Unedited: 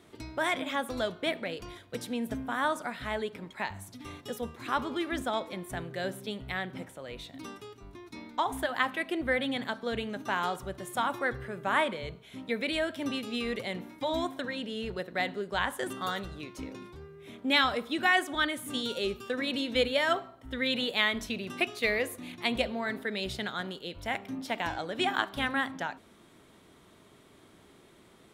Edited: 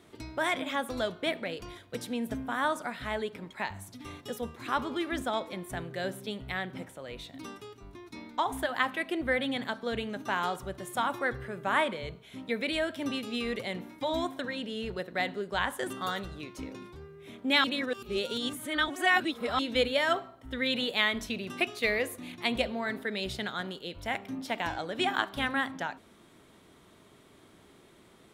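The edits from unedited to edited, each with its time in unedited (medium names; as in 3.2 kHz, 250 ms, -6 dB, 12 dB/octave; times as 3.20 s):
17.64–19.59 s: reverse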